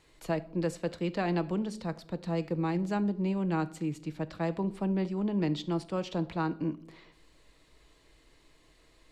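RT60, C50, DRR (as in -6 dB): 0.65 s, 18.5 dB, 11.0 dB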